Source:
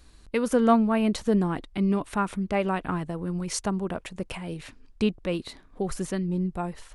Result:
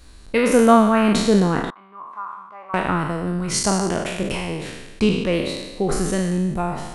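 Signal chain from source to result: spectral sustain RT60 1.15 s; 1.70–2.74 s: band-pass filter 1.1 kHz, Q 13; trim +5.5 dB

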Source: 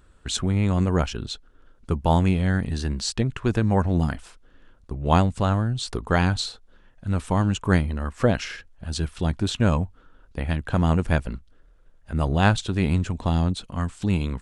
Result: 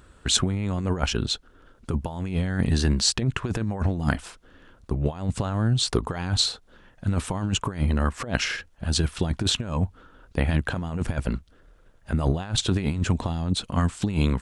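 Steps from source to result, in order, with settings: high-pass 54 Hz 6 dB/octave; compressor with a negative ratio -25 dBFS, ratio -0.5; trim +2.5 dB

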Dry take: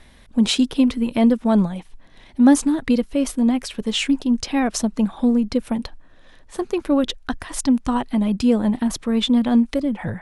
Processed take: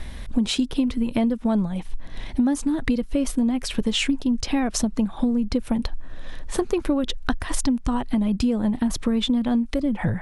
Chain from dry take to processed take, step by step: bass shelf 120 Hz +10.5 dB; compression 10:1, threshold -27 dBFS, peak gain reduction 19.5 dB; trim +8 dB

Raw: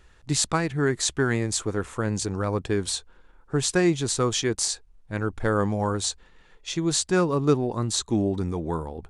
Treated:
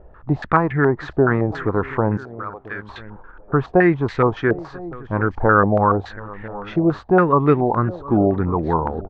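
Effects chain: 2.17–2.89 s: differentiator; echo from a far wall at 170 m, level -22 dB; in parallel at +1 dB: compression, threshold -32 dBFS, peak gain reduction 16.5 dB; on the sum: distance through air 160 m; on a send: delay 724 ms -20 dB; on the sum: step-sequenced low-pass 7.1 Hz 640–2000 Hz; trim +3.5 dB

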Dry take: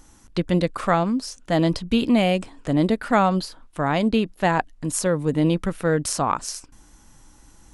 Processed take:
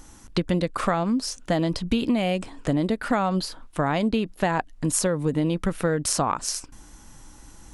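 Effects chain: compression 10:1, threshold -23 dBFS, peak gain reduction 11 dB; trim +4 dB

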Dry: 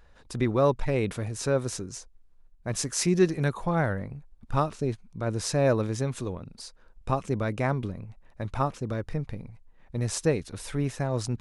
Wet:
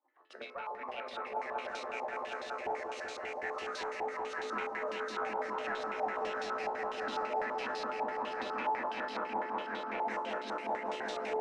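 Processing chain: harmonic-percussive separation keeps percussive; recorder AGC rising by 15 dB/s; frequency shift +200 Hz; bass shelf 120 Hz -7.5 dB; in parallel at +1 dB: level held to a coarse grid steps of 14 dB; on the sum: feedback comb 62 Hz, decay 0.42 s, harmonics all, mix 80%; saturation -26 dBFS, distortion -12 dB; feedback comb 87 Hz, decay 0.31 s, harmonics all, mix 80%; on a send: echo with a slow build-up 191 ms, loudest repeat 5, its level -3 dB; on the sum: step-sequenced low-pass 12 Hz 860–3700 Hz; trim -3.5 dB

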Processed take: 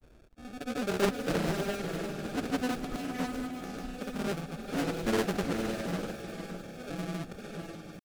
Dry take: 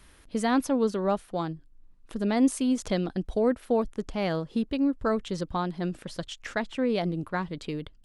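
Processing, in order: slow attack 625 ms; sample-rate reducer 1 kHz, jitter 0%; echo that smears into a reverb 551 ms, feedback 47%, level -4 dB; granulator, pitch spread up and down by 0 st; loudspeaker Doppler distortion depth 0.54 ms

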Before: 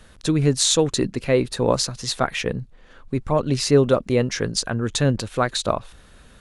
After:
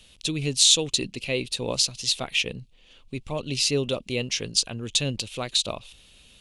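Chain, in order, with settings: resonant high shelf 2.1 kHz +9.5 dB, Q 3; trim -9.5 dB

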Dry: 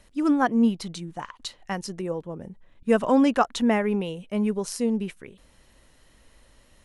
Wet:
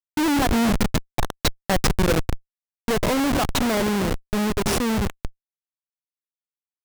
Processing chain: tone controls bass -4 dB, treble +6 dB; on a send: two-band feedback delay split 510 Hz, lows 115 ms, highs 239 ms, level -14 dB; on the sum: Schmitt trigger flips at -27 dBFS; gain riding 2 s; trim +7 dB

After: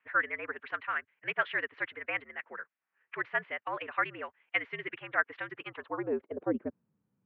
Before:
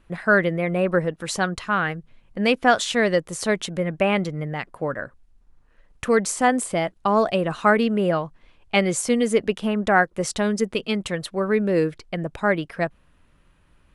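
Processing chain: band-pass sweep 2 kHz -> 230 Hz, 10.54–13.21 s; time stretch by phase-locked vocoder 0.52×; mistuned SSB -77 Hz 230–3200 Hz; trim -1.5 dB

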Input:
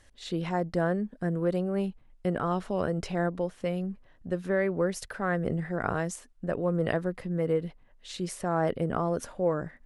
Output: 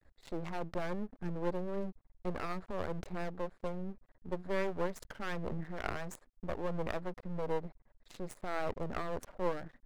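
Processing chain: local Wiener filter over 15 samples; half-wave rectifier; trim -2.5 dB

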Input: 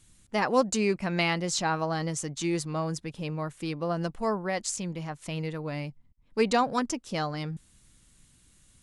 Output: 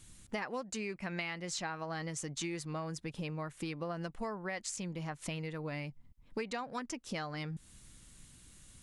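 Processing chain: dynamic bell 2 kHz, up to +7 dB, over -46 dBFS, Q 1.2; compression 10:1, threshold -39 dBFS, peak gain reduction 22 dB; trim +3 dB

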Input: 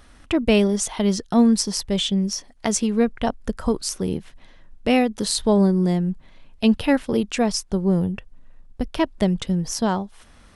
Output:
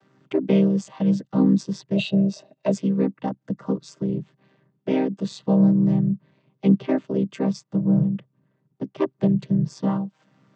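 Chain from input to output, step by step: vocoder on a held chord minor triad, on C3; 1.96–2.71 s: small resonant body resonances 620/2700/3800 Hz, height 18 dB -> 15 dB, ringing for 25 ms

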